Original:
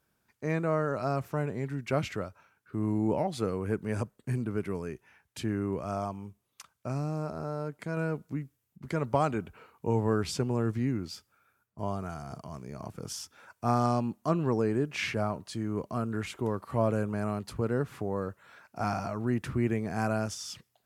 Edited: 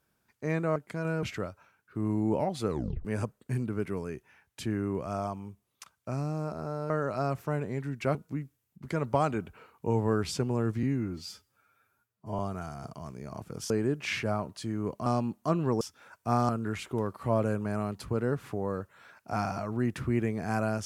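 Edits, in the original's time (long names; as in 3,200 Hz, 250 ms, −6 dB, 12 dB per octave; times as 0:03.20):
0:00.76–0:02.01: swap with 0:07.68–0:08.15
0:03.47: tape stop 0.36 s
0:10.83–0:11.87: time-stretch 1.5×
0:13.18–0:13.86: swap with 0:14.61–0:15.97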